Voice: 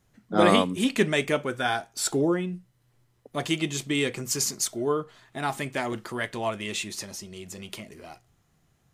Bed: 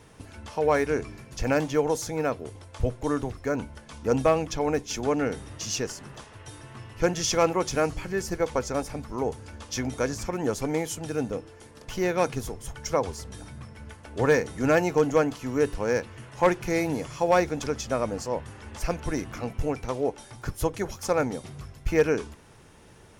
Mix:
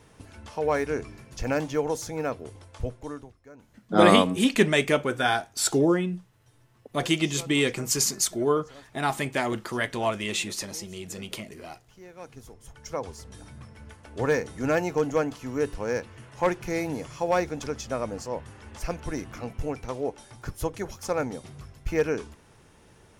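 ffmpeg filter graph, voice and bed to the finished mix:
-filter_complex "[0:a]adelay=3600,volume=1.33[s0];[1:a]volume=6.31,afade=t=out:st=2.64:d=0.71:silence=0.112202,afade=t=in:st=12.15:d=1.41:silence=0.11885[s1];[s0][s1]amix=inputs=2:normalize=0"

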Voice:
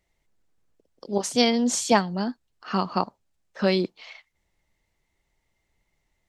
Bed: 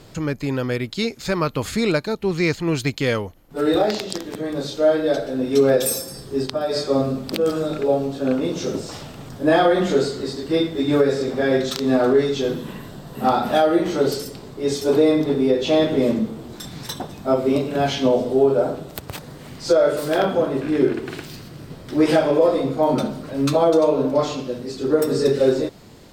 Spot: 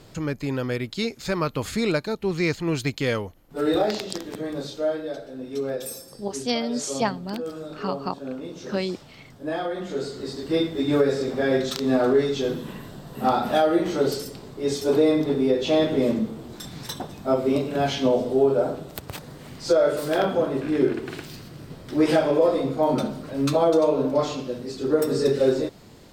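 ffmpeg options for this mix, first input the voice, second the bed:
-filter_complex "[0:a]adelay=5100,volume=0.562[s0];[1:a]volume=2,afade=t=out:st=4.4:d=0.72:silence=0.354813,afade=t=in:st=9.89:d=0.59:silence=0.334965[s1];[s0][s1]amix=inputs=2:normalize=0"

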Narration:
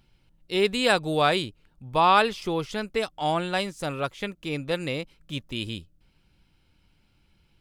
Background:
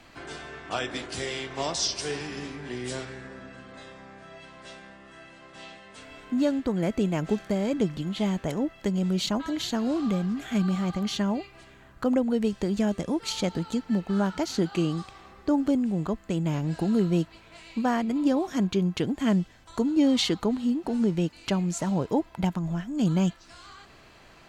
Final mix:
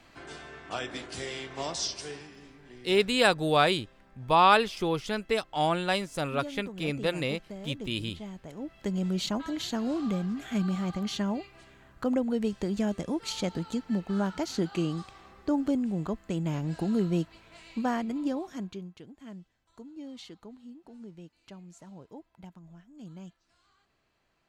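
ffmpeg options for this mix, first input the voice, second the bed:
-filter_complex "[0:a]adelay=2350,volume=0.891[s0];[1:a]volume=2.24,afade=t=out:st=1.82:d=0.53:silence=0.298538,afade=t=in:st=8.53:d=0.41:silence=0.266073,afade=t=out:st=17.86:d=1.09:silence=0.125893[s1];[s0][s1]amix=inputs=2:normalize=0"

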